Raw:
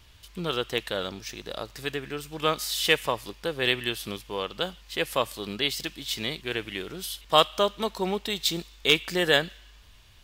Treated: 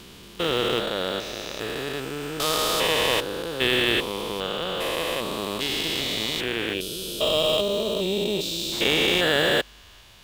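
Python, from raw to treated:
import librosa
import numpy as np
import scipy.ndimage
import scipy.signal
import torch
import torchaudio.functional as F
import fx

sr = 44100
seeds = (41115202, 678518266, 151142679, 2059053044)

p1 = fx.spec_steps(x, sr, hold_ms=400)
p2 = fx.low_shelf(p1, sr, hz=170.0, db=-11.5)
p3 = fx.sample_hold(p2, sr, seeds[0], rate_hz=3100.0, jitter_pct=0)
p4 = p2 + F.gain(torch.from_numpy(p3), -11.0).numpy()
p5 = fx.spec_box(p4, sr, start_s=6.74, length_s=1.98, low_hz=650.0, high_hz=2300.0, gain_db=-12)
y = F.gain(torch.from_numpy(p5), 9.0).numpy()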